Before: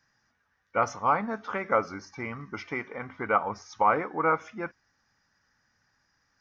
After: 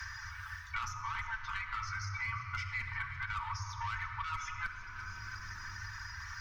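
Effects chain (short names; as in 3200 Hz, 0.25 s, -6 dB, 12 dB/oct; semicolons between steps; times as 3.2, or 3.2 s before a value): limiter -18.5 dBFS, peak gain reduction 6 dB; tube stage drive 24 dB, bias 0.5; Chebyshev band-stop 100–960 Hz, order 5; reverse; compressor 8:1, threshold -43 dBFS, peak gain reduction 14.5 dB; reverse; hard clip -36 dBFS, distortion -30 dB; notch comb 270 Hz; on a send: echo with dull and thin repeats by turns 0.171 s, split 970 Hz, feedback 60%, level -14 dB; on the sum: reverb removal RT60 0.77 s; resonant low shelf 340 Hz +10 dB, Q 1.5; shoebox room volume 3900 m³, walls mixed, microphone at 1.6 m; three-band squash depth 100%; gain +8 dB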